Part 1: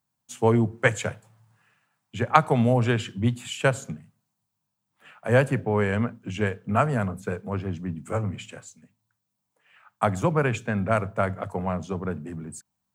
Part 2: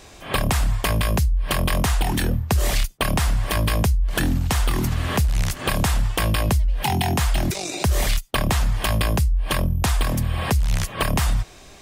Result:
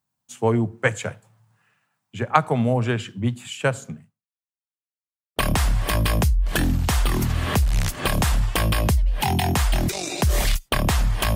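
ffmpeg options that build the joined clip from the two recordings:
-filter_complex "[0:a]apad=whole_dur=11.35,atrim=end=11.35,asplit=2[a][b];[a]atrim=end=4.77,asetpts=PTS-STARTPTS,afade=t=out:st=4.03:d=0.74:c=exp[c];[b]atrim=start=4.77:end=5.36,asetpts=PTS-STARTPTS,volume=0[d];[1:a]atrim=start=2.98:end=8.97,asetpts=PTS-STARTPTS,afade=t=in:d=0.004:c=hsin[e];[c][d][e]concat=n=3:v=0:a=1"

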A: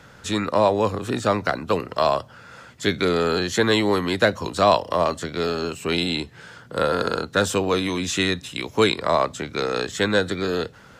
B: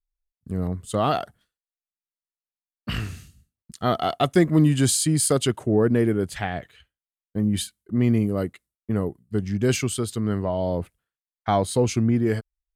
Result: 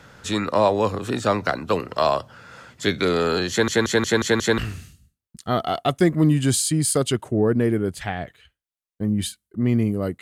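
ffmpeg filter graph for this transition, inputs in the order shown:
-filter_complex "[0:a]apad=whole_dur=10.21,atrim=end=10.21,asplit=6[a][b][c][d][e][f];[a]atrim=end=3.682[g];[b]atrim=start=3.498:end=3.682[h];[c]atrim=start=3.498:end=3.682[i];[d]atrim=start=3.498:end=3.682[j];[e]atrim=start=3.498:end=3.682[k];[f]atrim=start=3.498:end=3.682[l];[1:a]atrim=start=2.928:end=8.56[m];[g][h]acrossfade=d=0.004:c1=hsin:c2=hsin[n];[n][i]acrossfade=d=0.004:c1=hsin:c2=hsin[o];[o][j]acrossfade=d=0.004:c1=hsin:c2=hsin[p];[p][k]acrossfade=d=0.004:c1=hsin:c2=hsin[q];[q][l]acrossfade=d=0.004:c1=hsin:c2=hsin[r];[r][m]acrossfade=d=0.004:c1=hsin:c2=hsin"

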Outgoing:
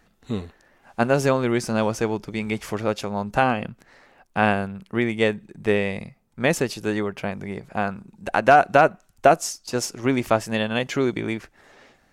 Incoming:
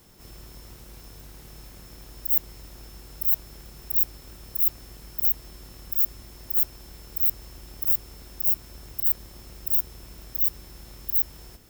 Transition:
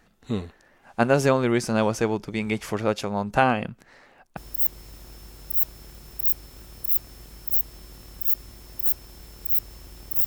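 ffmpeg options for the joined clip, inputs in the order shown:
-filter_complex "[0:a]apad=whole_dur=10.26,atrim=end=10.26,atrim=end=4.372[a];[1:a]atrim=start=2.078:end=7.97[b];[a][b]acrossfade=d=0.004:c1=hsin:c2=hsin"

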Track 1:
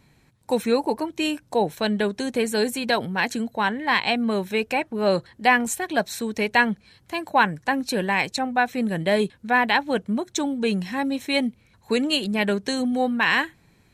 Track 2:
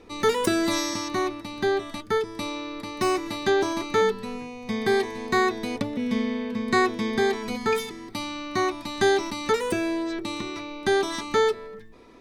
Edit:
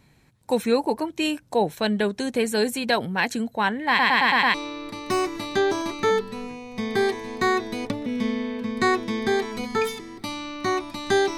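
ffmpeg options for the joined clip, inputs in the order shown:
-filter_complex "[0:a]apad=whole_dur=11.37,atrim=end=11.37,asplit=6[a][b][c][d][e][f];[a]atrim=end=3.992[g];[b]atrim=start=3.878:end=3.992[h];[c]atrim=start=3.878:end=3.992[i];[d]atrim=start=3.878:end=3.992[j];[e]atrim=start=3.878:end=3.992[k];[f]atrim=start=3.878:end=3.992[l];[1:a]atrim=start=2.448:end=9.28[m];[g][h]acrossfade=d=0.004:c1=hsin:c2=hsin[n];[n][i]acrossfade=d=0.004:c1=hsin:c2=hsin[o];[o][j]acrossfade=d=0.004:c1=hsin:c2=hsin[p];[p][k]acrossfade=d=0.004:c1=hsin:c2=hsin[q];[q][l]acrossfade=d=0.004:c1=hsin:c2=hsin[r];[r][m]acrossfade=d=0.004:c1=hsin:c2=hsin"

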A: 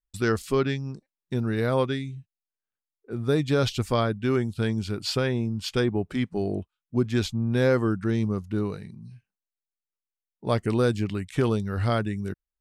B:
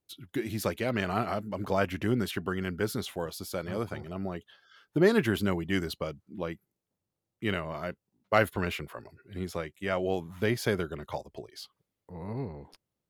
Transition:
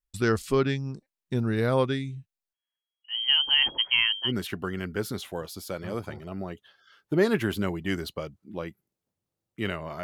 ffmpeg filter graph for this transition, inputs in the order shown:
-filter_complex "[0:a]asettb=1/sr,asplit=3[a][b][c];[a]atrim=end=2.534[d];[b]atrim=start=2.53:end=4.32,asetpts=PTS-STARTPTS,afade=t=in:d=0.004:c=qsin,afade=t=out:st=1.786:d=0.004:c=qsin,lowpass=f=2.8k:t=q:w=0.5098,lowpass=f=2.8k:t=q:w=0.6013,lowpass=f=2.8k:t=q:w=0.9,lowpass=f=2.8k:t=q:w=2.563,afreqshift=-3300[e];[c]atrim=start=4.316[f];[d][e]acrossfade=d=0.004:c1=hsin:c2=qsin[g];[g][f]acrossfade=d=0.004:c1=qsin:c2=hsin,apad=whole_dur=10.03,atrim=end=10.03,atrim=end=4.32,asetpts=PTS-STARTPTS[h];[1:a]atrim=start=2.08:end=7.87,asetpts=PTS-STARTPTS[i];[h][i]acrossfade=d=0.08:c1=tri:c2=tri"

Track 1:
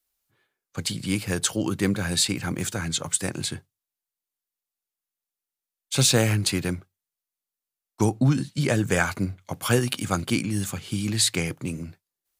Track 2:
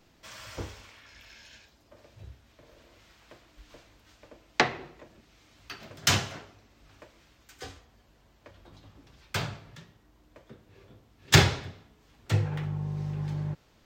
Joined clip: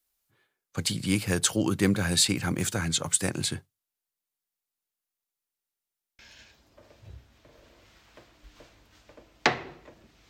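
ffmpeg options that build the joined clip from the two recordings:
-filter_complex "[0:a]apad=whole_dur=10.29,atrim=end=10.29,asplit=5[a][b][c][d][e];[a]atrim=end=5.632[f];[b]atrim=start=5.488:end=5.632[g];[c]atrim=start=5.488:end=5.632[h];[d]atrim=start=5.488:end=5.632[i];[e]atrim=start=5.488:end=5.632[j];[1:a]atrim=start=1.328:end=5.43[k];[f][g]acrossfade=d=0.004:c1=hsin:c2=hsin[l];[l][h]acrossfade=d=0.004:c1=hsin:c2=hsin[m];[m][i]acrossfade=d=0.004:c1=hsin:c2=hsin[n];[n][j]acrossfade=d=0.004:c1=hsin:c2=hsin[o];[o][k]acrossfade=d=0.004:c1=hsin:c2=hsin"

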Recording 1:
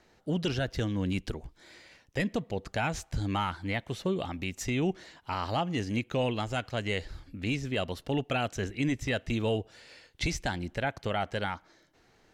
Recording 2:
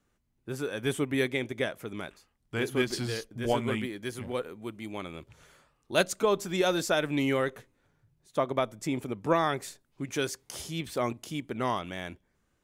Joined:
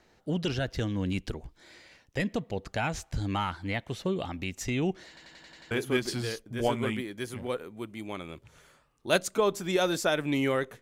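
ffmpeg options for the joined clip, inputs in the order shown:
-filter_complex "[0:a]apad=whole_dur=10.81,atrim=end=10.81,asplit=7[a][b][c][d][e][f][g];[a]atrim=end=5.172[h];[b]atrim=start=5.078:end=5.172[i];[c]atrim=start=5.078:end=5.172[j];[d]atrim=start=5.078:end=5.172[k];[e]atrim=start=5.078:end=5.172[l];[f]atrim=start=5.078:end=5.172[m];[g]atrim=start=5.078:end=5.172[n];[1:a]atrim=start=2.558:end=7.66[o];[h][i]acrossfade=d=0.004:c1=hsin:c2=hsin[p];[p][j]acrossfade=d=0.004:c1=hsin:c2=hsin[q];[q][k]acrossfade=d=0.004:c1=hsin:c2=hsin[r];[r][l]acrossfade=d=0.004:c1=hsin:c2=hsin[s];[s][m]acrossfade=d=0.004:c1=hsin:c2=hsin[t];[t][n]acrossfade=d=0.004:c1=hsin:c2=hsin[u];[u][o]acrossfade=d=0.004:c1=hsin:c2=hsin"

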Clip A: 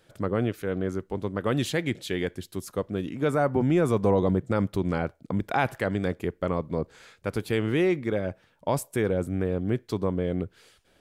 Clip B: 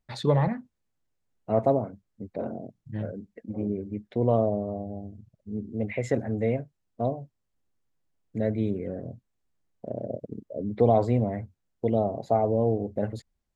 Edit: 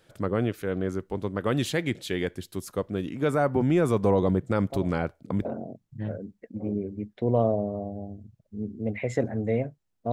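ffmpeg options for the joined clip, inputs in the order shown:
-filter_complex "[1:a]asplit=2[a][b];[0:a]apad=whole_dur=10.12,atrim=end=10.12,atrim=end=5.452[c];[b]atrim=start=2.388:end=7.06[d];[a]atrim=start=1.64:end=2.39,asetpts=PTS-STARTPTS,volume=-14.5dB,afade=t=in:d=0.004:c=hsin,afade=t=out:st=0.746:d=0.004:c=hsin,adelay=4700[e];[c][d]acrossfade=d=0.004:c1=hsin:c2=hsin[f];[f][e]amix=inputs=2:normalize=0"

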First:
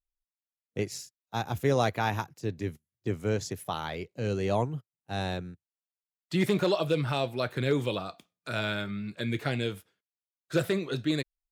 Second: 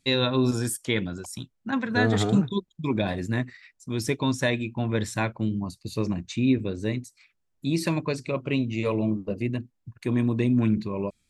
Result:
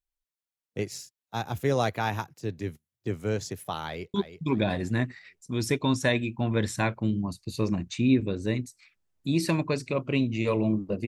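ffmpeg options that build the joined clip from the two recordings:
-filter_complex "[0:a]apad=whole_dur=11.07,atrim=end=11.07,atrim=end=4.142[a];[1:a]atrim=start=2.518:end=9.45[b];[a][b]acrossfade=d=0.004:c1=hsin:c2=hsin,asplit=2[c][d];[d]afade=t=in:st=3.82:d=0.01,afade=t=out:st=4.14:d=0.01,aecho=0:1:330|660|990|1320:0.316228|0.11068|0.0387379|0.0135583[e];[c][e]amix=inputs=2:normalize=0"

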